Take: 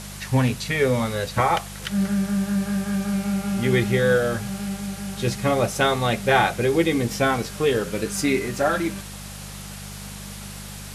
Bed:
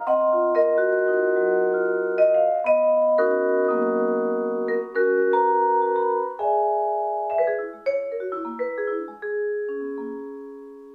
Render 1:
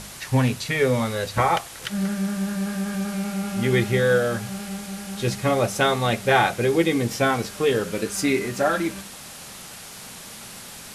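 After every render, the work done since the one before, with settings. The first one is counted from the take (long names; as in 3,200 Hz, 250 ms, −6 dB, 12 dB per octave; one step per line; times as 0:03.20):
hum removal 50 Hz, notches 4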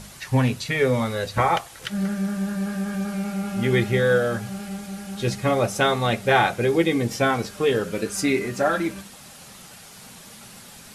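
broadband denoise 6 dB, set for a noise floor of −40 dBFS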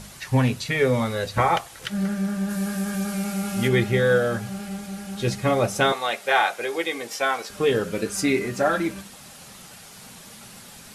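0:02.49–0:03.67: high-shelf EQ 5,400 Hz → 3,400 Hz +9.5 dB
0:05.92–0:07.50: high-pass filter 610 Hz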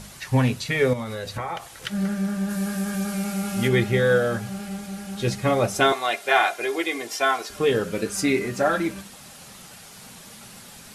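0:00.93–0:01.78: downward compressor 5 to 1, threshold −27 dBFS
0:05.74–0:07.59: comb filter 2.9 ms, depth 58%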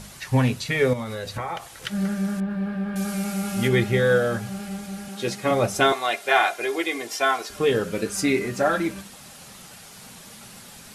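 0:00.93–0:01.60: floating-point word with a short mantissa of 6 bits
0:02.40–0:02.96: high-frequency loss of the air 440 metres
0:05.08–0:05.51: high-pass filter 220 Hz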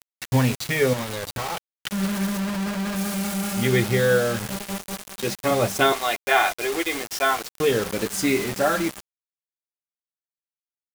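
bit reduction 5 bits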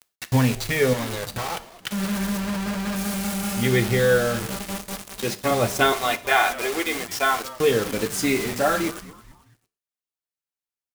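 echo with shifted repeats 219 ms, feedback 42%, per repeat −150 Hz, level −18 dB
reverb whose tail is shaped and stops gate 150 ms falling, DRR 12 dB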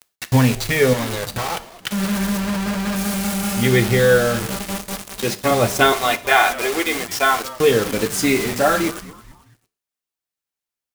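level +4.5 dB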